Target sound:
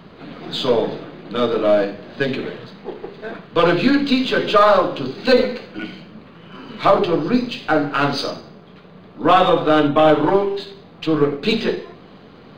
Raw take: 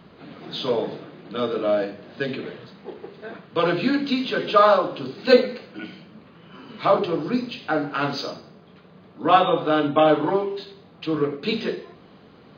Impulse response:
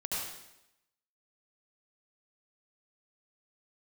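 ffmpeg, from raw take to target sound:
-af "aeval=exprs='if(lt(val(0),0),0.708*val(0),val(0))':channel_layout=same,alimiter=level_in=9.5dB:limit=-1dB:release=50:level=0:latency=1,volume=-2dB"

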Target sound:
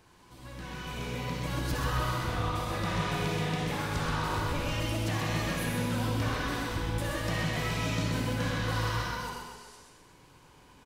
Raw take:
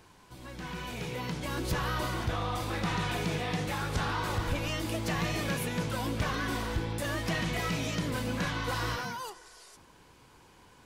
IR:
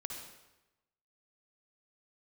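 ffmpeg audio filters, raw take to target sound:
-filter_complex "[0:a]aecho=1:1:128|256|384|512|640|768:0.531|0.255|0.122|0.0587|0.0282|0.0135[link_01];[1:a]atrim=start_sample=2205[link_02];[link_01][link_02]afir=irnorm=-1:irlink=0"

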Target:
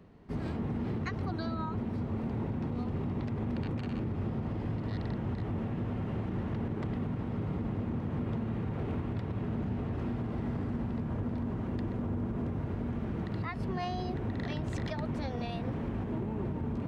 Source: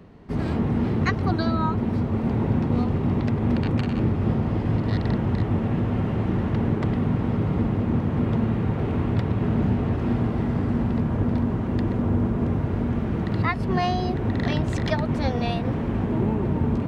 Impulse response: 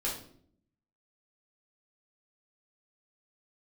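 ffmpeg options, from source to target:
-af "alimiter=limit=-17.5dB:level=0:latency=1:release=69,volume=-8.5dB"

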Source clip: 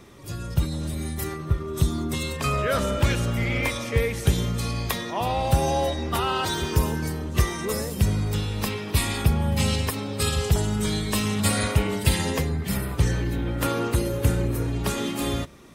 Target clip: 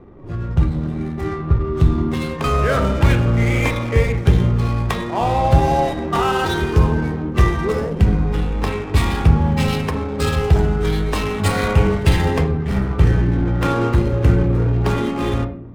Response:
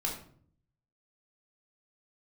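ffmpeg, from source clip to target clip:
-filter_complex "[0:a]bandreject=frequency=104.6:width_type=h:width=4,bandreject=frequency=209.2:width_type=h:width=4,adynamicsmooth=sensitivity=7:basefreq=620,asplit=2[link_01][link_02];[1:a]atrim=start_sample=2205,lowpass=2600[link_03];[link_02][link_03]afir=irnorm=-1:irlink=0,volume=-4.5dB[link_04];[link_01][link_04]amix=inputs=2:normalize=0,volume=2.5dB"

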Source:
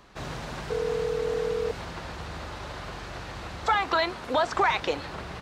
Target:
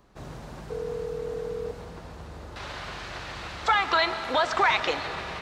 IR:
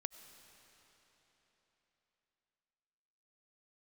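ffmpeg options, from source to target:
-filter_complex "[0:a]asetnsamples=nb_out_samples=441:pad=0,asendcmd='2.56 equalizer g 7',equalizer=frequency=2800:width=0.38:gain=-8.5[link_01];[1:a]atrim=start_sample=2205[link_02];[link_01][link_02]afir=irnorm=-1:irlink=0"

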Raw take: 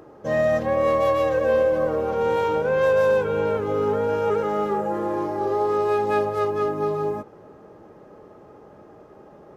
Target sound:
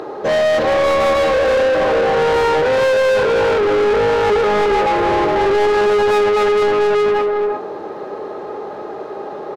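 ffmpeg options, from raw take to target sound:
ffmpeg -i in.wav -filter_complex "[0:a]equalizer=frequency=400:width_type=o:width=0.33:gain=8,equalizer=frequency=800:width_type=o:width=0.33:gain=4,equalizer=frequency=4000:width_type=o:width=0.33:gain=11,asplit=2[link_01][link_02];[link_02]adelay=360,highpass=300,lowpass=3400,asoftclip=type=hard:threshold=-14.5dB,volume=-9dB[link_03];[link_01][link_03]amix=inputs=2:normalize=0,asplit=2[link_04][link_05];[link_05]highpass=frequency=720:poles=1,volume=29dB,asoftclip=type=tanh:threshold=-6dB[link_06];[link_04][link_06]amix=inputs=2:normalize=0,lowpass=frequency=3000:poles=1,volume=-6dB,volume=-2.5dB" out.wav

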